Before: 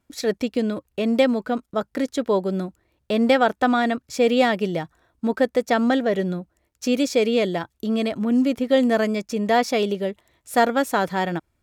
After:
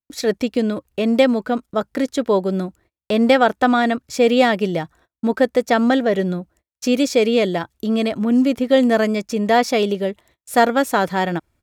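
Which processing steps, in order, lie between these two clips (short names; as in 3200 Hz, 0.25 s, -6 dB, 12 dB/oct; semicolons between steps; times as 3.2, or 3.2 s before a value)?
gate -53 dBFS, range -32 dB; gain +3.5 dB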